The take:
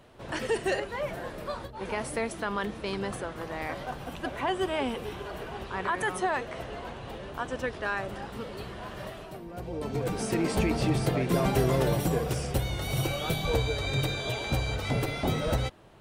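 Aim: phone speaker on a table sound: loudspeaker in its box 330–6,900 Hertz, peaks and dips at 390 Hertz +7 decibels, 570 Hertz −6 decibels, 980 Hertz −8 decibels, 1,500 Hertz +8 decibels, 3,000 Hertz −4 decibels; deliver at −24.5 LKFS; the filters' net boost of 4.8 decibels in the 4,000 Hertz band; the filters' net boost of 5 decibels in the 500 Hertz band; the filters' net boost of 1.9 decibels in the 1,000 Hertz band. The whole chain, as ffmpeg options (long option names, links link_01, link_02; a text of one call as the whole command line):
ffmpeg -i in.wav -af "highpass=frequency=330:width=0.5412,highpass=frequency=330:width=1.3066,equalizer=frequency=390:width_type=q:width=4:gain=7,equalizer=frequency=570:width_type=q:width=4:gain=-6,equalizer=frequency=980:width_type=q:width=4:gain=-8,equalizer=frequency=1500:width_type=q:width=4:gain=8,equalizer=frequency=3000:width_type=q:width=4:gain=-4,lowpass=frequency=6900:width=0.5412,lowpass=frequency=6900:width=1.3066,equalizer=frequency=500:width_type=o:gain=4,equalizer=frequency=1000:width_type=o:gain=4,equalizer=frequency=4000:width_type=o:gain=7,volume=4dB" out.wav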